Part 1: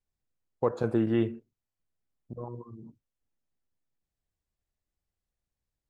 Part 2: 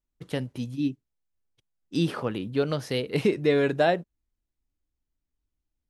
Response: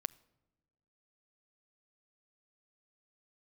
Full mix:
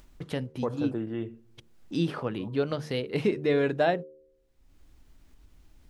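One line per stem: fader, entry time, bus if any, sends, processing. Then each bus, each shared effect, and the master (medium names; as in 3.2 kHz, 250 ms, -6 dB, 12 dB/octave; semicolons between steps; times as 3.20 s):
-1.0 dB, 0.00 s, send -8.5 dB, auto duck -22 dB, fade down 1.60 s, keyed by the second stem
-2.0 dB, 0.00 s, no send, treble shelf 6 kHz -9 dB; de-hum 76.18 Hz, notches 7; upward compressor, threshold -29 dBFS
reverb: on, pre-delay 7 ms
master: none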